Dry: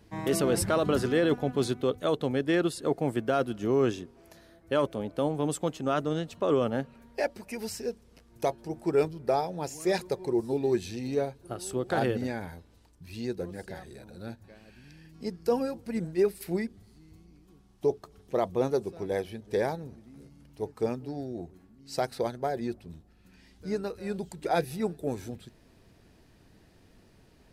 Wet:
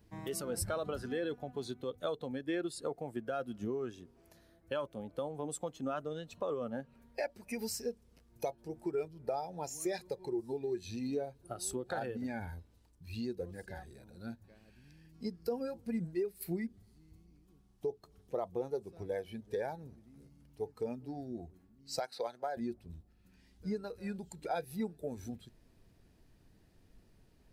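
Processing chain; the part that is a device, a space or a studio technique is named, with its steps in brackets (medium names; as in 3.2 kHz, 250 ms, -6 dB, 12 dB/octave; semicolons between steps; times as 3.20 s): 22.00–22.57 s: frequency weighting A; ASMR close-microphone chain (bass shelf 220 Hz +5.5 dB; compression 6:1, threshold -30 dBFS, peak gain reduction 11.5 dB; treble shelf 9.6 kHz +6.5 dB); spectral noise reduction 9 dB; trim -1.5 dB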